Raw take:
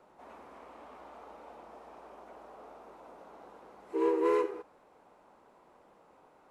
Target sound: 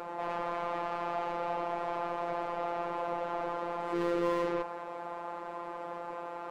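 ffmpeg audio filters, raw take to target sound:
ffmpeg -i in.wav -filter_complex "[0:a]asplit=2[link_01][link_02];[link_02]highpass=frequency=720:poles=1,volume=40dB,asoftclip=type=tanh:threshold=-17.5dB[link_03];[link_01][link_03]amix=inputs=2:normalize=0,lowpass=frequency=1100:poles=1,volume=-6dB,afftfilt=real='hypot(re,im)*cos(PI*b)':imag='0':win_size=1024:overlap=0.75,volume=-3dB" out.wav

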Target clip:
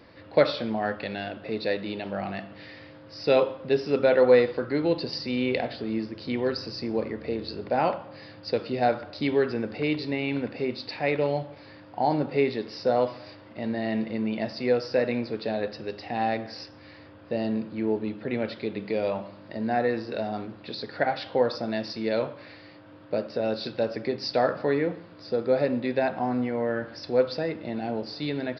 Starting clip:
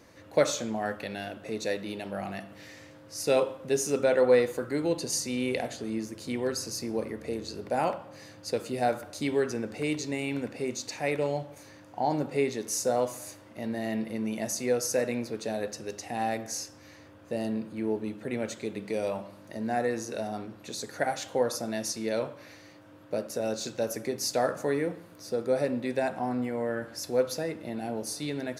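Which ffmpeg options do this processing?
ffmpeg -i in.wav -af "aresample=11025,aresample=44100,volume=3.5dB" out.wav

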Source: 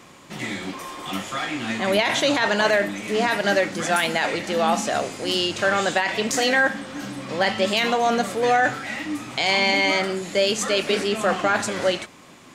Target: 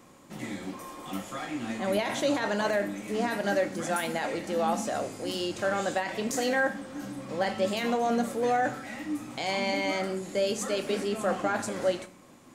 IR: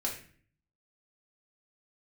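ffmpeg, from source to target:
-filter_complex "[0:a]equalizer=frequency=3100:width=0.45:gain=-8.5,asplit=2[link_01][link_02];[1:a]atrim=start_sample=2205,highshelf=frequency=6000:gain=9[link_03];[link_02][link_03]afir=irnorm=-1:irlink=0,volume=-11.5dB[link_04];[link_01][link_04]amix=inputs=2:normalize=0,volume=-7dB"

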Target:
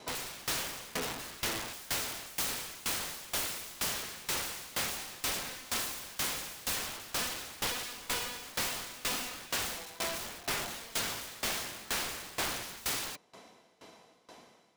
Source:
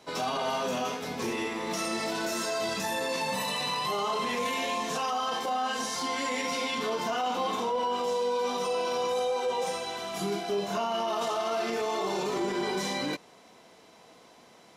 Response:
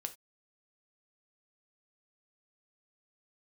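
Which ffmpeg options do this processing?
-af "acontrast=23,aeval=exprs='(mod(18.8*val(0)+1,2)-1)/18.8':channel_layout=same,aeval=exprs='val(0)*pow(10,-21*if(lt(mod(2.1*n/s,1),2*abs(2.1)/1000),1-mod(2.1*n/s,1)/(2*abs(2.1)/1000),(mod(2.1*n/s,1)-2*abs(2.1)/1000)/(1-2*abs(2.1)/1000))/20)':channel_layout=same"

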